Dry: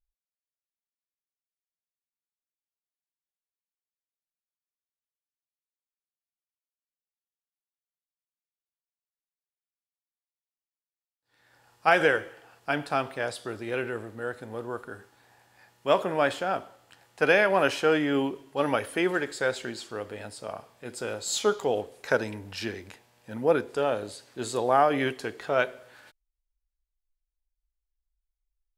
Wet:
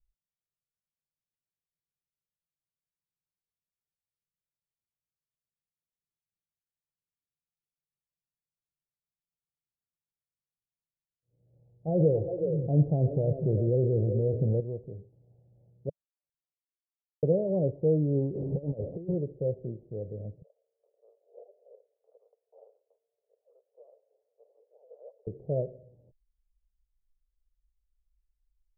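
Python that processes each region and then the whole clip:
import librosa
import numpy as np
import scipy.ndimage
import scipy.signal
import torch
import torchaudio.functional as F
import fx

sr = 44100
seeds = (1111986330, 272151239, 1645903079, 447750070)

y = fx.chain(x, sr, fx.echo_stepped(ms=125, hz=3100.0, octaves=-1.4, feedback_pct=70, wet_db=-5),
    fx.env_flatten(amount_pct=50), at=(11.9, 14.6))
y = fx.chain(y, sr, fx.steep_highpass(hz=2800.0, slope=36),
    fx.sustainer(db_per_s=120.0), at=(15.89, 17.23))
y = fx.chain(y, sr, fx.delta_mod(bps=64000, step_db=-27.0),
    fx.highpass(hz=140.0, slope=6),
    fx.over_compress(threshold_db=-30.0, ratio=-0.5), at=(18.35, 19.14))
y = fx.chain(y, sr, fx.freq_invert(carrier_hz=3700),
    fx.cheby1_highpass(hz=440.0, order=6), at=(20.42, 25.27))
y = scipy.signal.sosfilt(scipy.signal.butter(8, 570.0, 'lowpass', fs=sr, output='sos'), y)
y = fx.low_shelf_res(y, sr, hz=200.0, db=7.0, q=3.0)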